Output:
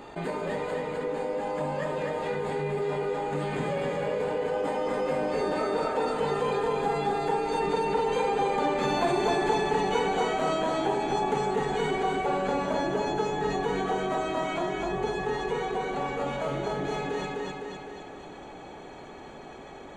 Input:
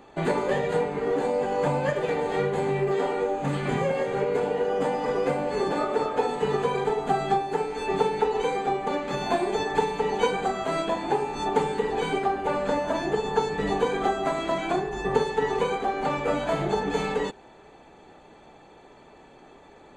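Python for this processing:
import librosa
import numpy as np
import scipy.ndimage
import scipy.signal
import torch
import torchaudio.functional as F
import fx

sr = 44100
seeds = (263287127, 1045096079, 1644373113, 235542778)

p1 = fx.doppler_pass(x, sr, speed_mps=12, closest_m=12.0, pass_at_s=9.02)
p2 = fx.rider(p1, sr, range_db=3, speed_s=0.5)
p3 = p2 + fx.echo_feedback(p2, sr, ms=254, feedback_pct=38, wet_db=-3.0, dry=0)
y = fx.env_flatten(p3, sr, amount_pct=50)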